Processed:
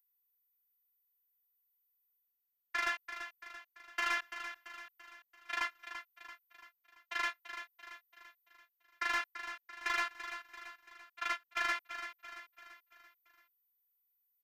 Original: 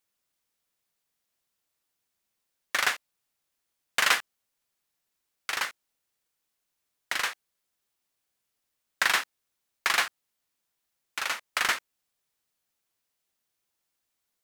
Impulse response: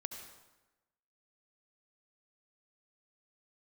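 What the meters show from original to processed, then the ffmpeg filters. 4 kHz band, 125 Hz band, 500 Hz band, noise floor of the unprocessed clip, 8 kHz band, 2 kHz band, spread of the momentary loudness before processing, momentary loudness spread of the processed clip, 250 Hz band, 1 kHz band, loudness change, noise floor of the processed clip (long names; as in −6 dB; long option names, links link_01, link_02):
−13.0 dB, can't be measured, −8.0 dB, −82 dBFS, −17.0 dB, −7.5 dB, 10 LU, 20 LU, −5.5 dB, −6.0 dB, −10.5 dB, −84 dBFS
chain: -filter_complex "[0:a]agate=range=-27dB:threshold=-30dB:ratio=16:detection=peak,highshelf=frequency=5000:gain=-6.5,aeval=exprs='val(0)+0.00112*sin(2*PI*14000*n/s)':channel_layout=same,alimiter=limit=-15.5dB:level=0:latency=1:release=91,areverse,acompressor=mode=upward:threshold=-50dB:ratio=2.5,areverse,asoftclip=type=hard:threshold=-24dB,afftfilt=real='hypot(re,im)*cos(PI*b)':imag='0':win_size=512:overlap=0.75,acrossover=split=580 4000:gain=0.224 1 0.224[link_01][link_02][link_03];[link_01][link_02][link_03]amix=inputs=3:normalize=0,asoftclip=type=tanh:threshold=-27dB,aecho=1:1:338|676|1014|1352|1690:0.316|0.158|0.0791|0.0395|0.0198,volume=3.5dB"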